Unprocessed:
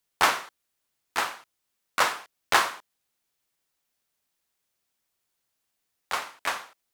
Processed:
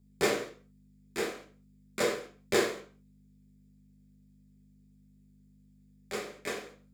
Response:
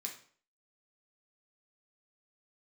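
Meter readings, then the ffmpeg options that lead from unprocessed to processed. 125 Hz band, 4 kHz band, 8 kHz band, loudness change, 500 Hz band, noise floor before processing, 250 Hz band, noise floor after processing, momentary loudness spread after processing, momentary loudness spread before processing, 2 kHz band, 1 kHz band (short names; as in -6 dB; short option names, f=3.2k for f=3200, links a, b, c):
+6.0 dB, -8.0 dB, -5.5 dB, -6.0 dB, +5.5 dB, -80 dBFS, +8.0 dB, -61 dBFS, 16 LU, 16 LU, -8.5 dB, -13.5 dB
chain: -filter_complex "[0:a]lowshelf=f=650:t=q:w=3:g=12.5,aeval=exprs='val(0)+0.00355*(sin(2*PI*50*n/s)+sin(2*PI*2*50*n/s)/2+sin(2*PI*3*50*n/s)/3+sin(2*PI*4*50*n/s)/4+sin(2*PI*5*50*n/s)/5)':c=same[a];[1:a]atrim=start_sample=2205,afade=t=out:st=0.28:d=0.01,atrim=end_sample=12789[b];[a][b]afir=irnorm=-1:irlink=0,volume=-5.5dB"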